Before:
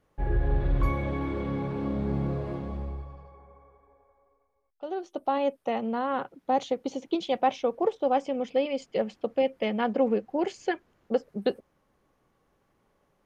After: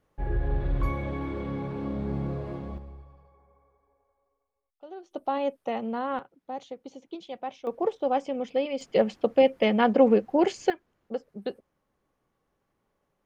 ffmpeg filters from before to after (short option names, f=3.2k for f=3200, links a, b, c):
-af "asetnsamples=n=441:p=0,asendcmd='2.78 volume volume -9dB;5.11 volume volume -1.5dB;6.19 volume volume -11dB;7.67 volume volume -1dB;8.81 volume volume 5.5dB;10.7 volume volume -6.5dB',volume=-2dB"